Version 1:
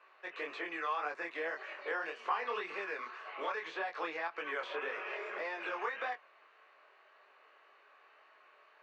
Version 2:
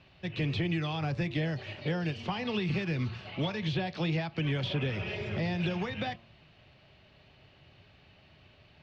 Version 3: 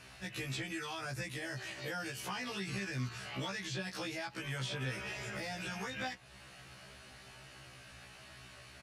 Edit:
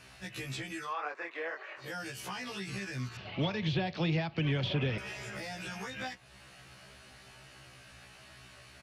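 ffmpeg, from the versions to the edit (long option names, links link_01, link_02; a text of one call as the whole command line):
ffmpeg -i take0.wav -i take1.wav -i take2.wav -filter_complex "[2:a]asplit=3[link_01][link_02][link_03];[link_01]atrim=end=0.95[link_04];[0:a]atrim=start=0.79:end=1.91[link_05];[link_02]atrim=start=1.75:end=3.172[link_06];[1:a]atrim=start=3.168:end=4.982[link_07];[link_03]atrim=start=4.978[link_08];[link_04][link_05]acrossfade=duration=0.16:curve1=tri:curve2=tri[link_09];[link_09][link_06]acrossfade=duration=0.16:curve1=tri:curve2=tri[link_10];[link_10][link_07]acrossfade=duration=0.004:curve1=hsin:curve2=hsin[link_11];[link_11][link_08]acrossfade=duration=0.004:curve1=hsin:curve2=hsin" out.wav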